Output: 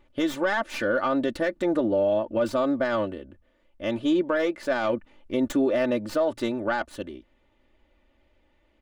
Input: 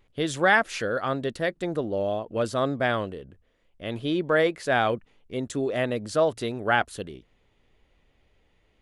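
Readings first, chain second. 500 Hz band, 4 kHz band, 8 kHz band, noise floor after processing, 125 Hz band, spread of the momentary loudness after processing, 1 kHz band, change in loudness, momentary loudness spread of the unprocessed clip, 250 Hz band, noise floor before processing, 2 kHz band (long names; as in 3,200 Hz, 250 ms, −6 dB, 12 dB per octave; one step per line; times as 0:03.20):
+1.0 dB, −3.5 dB, −5.0 dB, −66 dBFS, −7.0 dB, 8 LU, −3.0 dB, 0.0 dB, 13 LU, +4.5 dB, −66 dBFS, −4.5 dB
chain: stylus tracing distortion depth 0.11 ms
comb filter 3.4 ms, depth 77%
speech leveller within 5 dB 0.5 s
low-shelf EQ 130 Hz −6 dB
brickwall limiter −18 dBFS, peak gain reduction 11 dB
high-shelf EQ 3,400 Hz −10.5 dB
level +3 dB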